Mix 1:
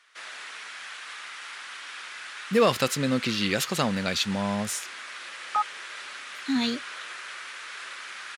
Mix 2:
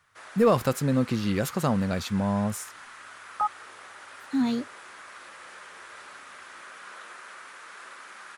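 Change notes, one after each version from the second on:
speech: entry -2.15 s; master: remove frequency weighting D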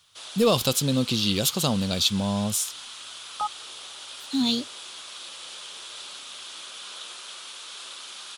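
master: add resonant high shelf 2.5 kHz +10.5 dB, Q 3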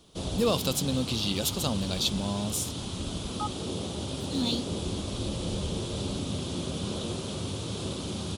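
speech -5.5 dB; background: remove resonant high-pass 1.5 kHz, resonance Q 1.7

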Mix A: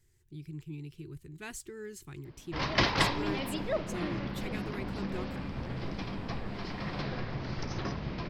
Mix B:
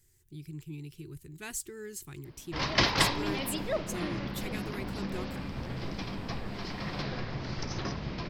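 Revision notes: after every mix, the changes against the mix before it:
master: add treble shelf 6.2 kHz +12 dB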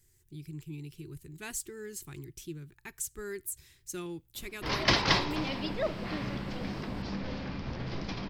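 background: entry +2.10 s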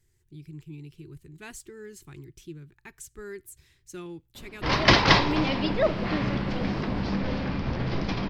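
background +8.5 dB; master: add treble shelf 6.2 kHz -12 dB

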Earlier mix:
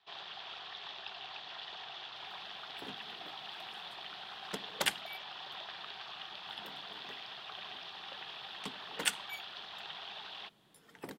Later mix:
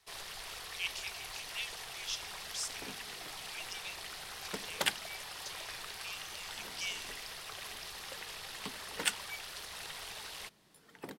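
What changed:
speech: unmuted; first sound: remove cabinet simulation 190–3700 Hz, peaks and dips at 290 Hz -4 dB, 490 Hz -9 dB, 760 Hz +5 dB, 2.1 kHz -7 dB, 3.4 kHz +7 dB

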